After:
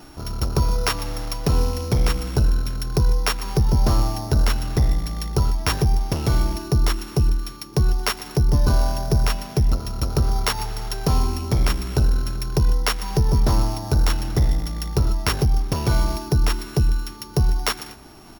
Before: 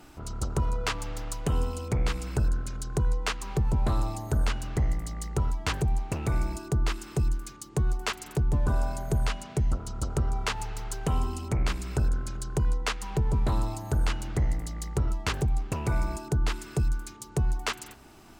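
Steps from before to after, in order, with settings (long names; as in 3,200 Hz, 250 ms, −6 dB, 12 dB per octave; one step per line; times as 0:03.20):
samples sorted by size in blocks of 8 samples
slap from a distant wall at 21 metres, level −19 dB
level +7.5 dB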